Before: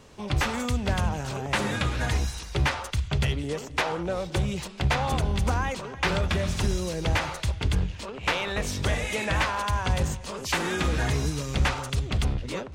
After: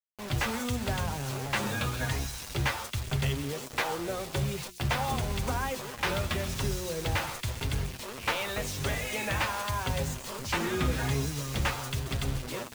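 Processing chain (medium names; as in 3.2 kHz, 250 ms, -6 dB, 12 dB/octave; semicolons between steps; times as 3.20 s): bit crusher 6-bit; hum notches 60/120/180/240/300/360 Hz; flange 0.9 Hz, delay 7.2 ms, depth 1.7 ms, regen +39%; 1.60–2.00 s: band-stop 2 kHz, Q 7.4; 10.39–10.92 s: tone controls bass +7 dB, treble -3 dB; on a send: feedback echo behind a high-pass 132 ms, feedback 50%, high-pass 5.4 kHz, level -7.5 dB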